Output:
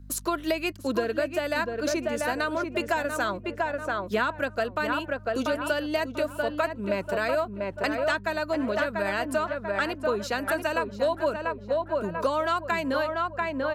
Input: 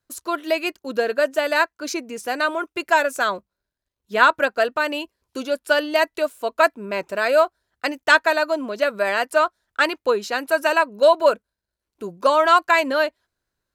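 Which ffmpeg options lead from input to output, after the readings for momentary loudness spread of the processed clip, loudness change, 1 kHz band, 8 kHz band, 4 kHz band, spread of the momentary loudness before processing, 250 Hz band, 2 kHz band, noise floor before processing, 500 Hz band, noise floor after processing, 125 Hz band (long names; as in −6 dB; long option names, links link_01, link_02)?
3 LU, −7.5 dB, −8.0 dB, −3.0 dB, −8.0 dB, 12 LU, −0.5 dB, −8.5 dB, −85 dBFS, −6.5 dB, −43 dBFS, can't be measured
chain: -filter_complex "[0:a]aeval=exprs='val(0)+0.00355*(sin(2*PI*50*n/s)+sin(2*PI*2*50*n/s)/2+sin(2*PI*3*50*n/s)/3+sin(2*PI*4*50*n/s)/4+sin(2*PI*5*50*n/s)/5)':channel_layout=same,asplit=2[link_01][link_02];[link_02]adelay=690,lowpass=frequency=1800:poles=1,volume=-5.5dB,asplit=2[link_03][link_04];[link_04]adelay=690,lowpass=frequency=1800:poles=1,volume=0.36,asplit=2[link_05][link_06];[link_06]adelay=690,lowpass=frequency=1800:poles=1,volume=0.36,asplit=2[link_07][link_08];[link_08]adelay=690,lowpass=frequency=1800:poles=1,volume=0.36[link_09];[link_01][link_03][link_05][link_07][link_09]amix=inputs=5:normalize=0,acrossover=split=210[link_10][link_11];[link_11]acompressor=threshold=-31dB:ratio=5[link_12];[link_10][link_12]amix=inputs=2:normalize=0,volume=5dB"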